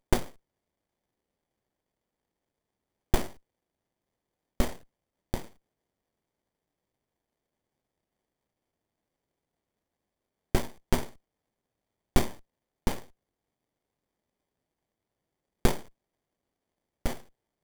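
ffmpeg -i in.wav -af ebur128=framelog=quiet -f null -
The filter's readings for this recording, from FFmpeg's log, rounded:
Integrated loudness:
  I:         -34.0 LUFS
  Threshold: -45.1 LUFS
Loudness range:
  LRA:         6.8 LU
  Threshold: -59.4 LUFS
  LRA low:   -42.7 LUFS
  LRA high:  -35.9 LUFS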